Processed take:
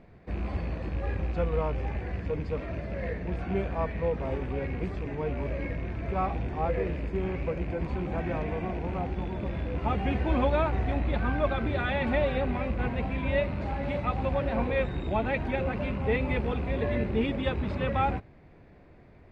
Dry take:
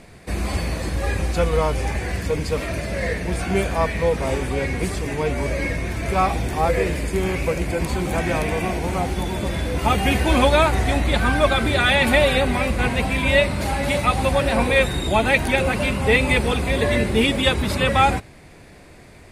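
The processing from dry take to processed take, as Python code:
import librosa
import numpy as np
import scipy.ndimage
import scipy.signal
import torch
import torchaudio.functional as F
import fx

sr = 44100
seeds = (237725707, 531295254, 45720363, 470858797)

y = fx.rattle_buzz(x, sr, strikes_db=-23.0, level_db=-21.0)
y = fx.spacing_loss(y, sr, db_at_10k=38)
y = y * librosa.db_to_amplitude(-7.0)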